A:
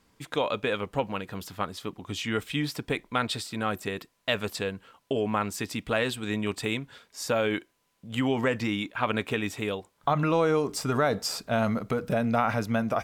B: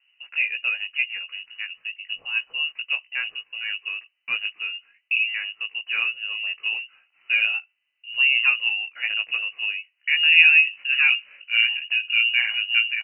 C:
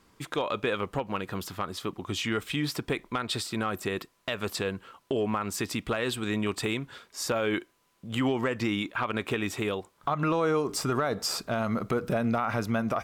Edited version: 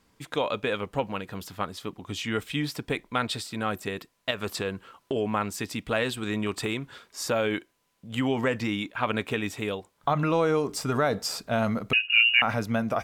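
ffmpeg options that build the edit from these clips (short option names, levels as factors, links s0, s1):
-filter_complex "[2:a]asplit=2[s0][s1];[0:a]asplit=4[s2][s3][s4][s5];[s2]atrim=end=4.312[s6];[s0]atrim=start=4.308:end=5.162[s7];[s3]atrim=start=5.158:end=6.172[s8];[s1]atrim=start=6.168:end=7.312[s9];[s4]atrim=start=7.308:end=11.932[s10];[1:a]atrim=start=11.928:end=12.422[s11];[s5]atrim=start=12.418[s12];[s6][s7]acrossfade=d=0.004:c1=hsin:c2=hsin[s13];[s13][s8]acrossfade=d=0.004:c1=hsin:c2=hsin[s14];[s14][s9]acrossfade=d=0.004:c1=hsin:c2=hsin[s15];[s15][s10]acrossfade=d=0.004:c1=hsin:c2=hsin[s16];[s16][s11]acrossfade=d=0.004:c1=hsin:c2=hsin[s17];[s17][s12]acrossfade=d=0.004:c1=hsin:c2=hsin"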